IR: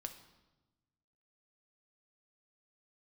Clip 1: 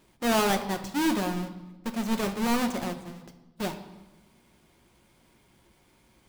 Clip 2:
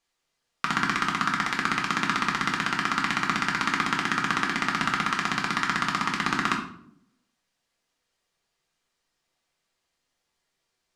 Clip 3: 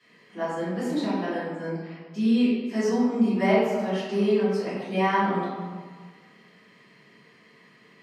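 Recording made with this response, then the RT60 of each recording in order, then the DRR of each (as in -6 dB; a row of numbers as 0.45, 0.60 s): 1; 1.1, 0.70, 1.6 s; 6.0, -1.0, -14.5 dB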